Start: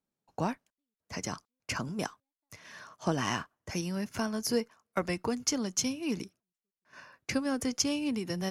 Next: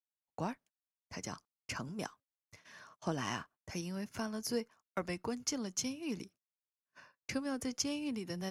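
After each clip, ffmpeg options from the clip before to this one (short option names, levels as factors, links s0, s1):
-af "agate=range=0.0562:threshold=0.00251:ratio=16:detection=peak,volume=0.473"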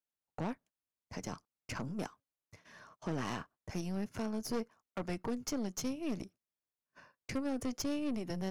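-af "tiltshelf=f=1100:g=4,aeval=exprs='(tanh(50.1*val(0)+0.6)-tanh(0.6))/50.1':c=same,volume=1.41"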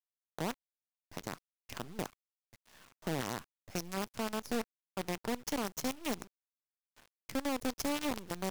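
-af "acrusher=bits=6:dc=4:mix=0:aa=0.000001,volume=0.841"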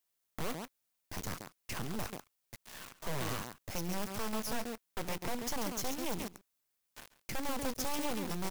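-af "crystalizer=i=0.5:c=0,aecho=1:1:138:0.133,aeval=exprs='0.0944*sin(PI/2*5.62*val(0)/0.0944)':c=same,volume=0.376"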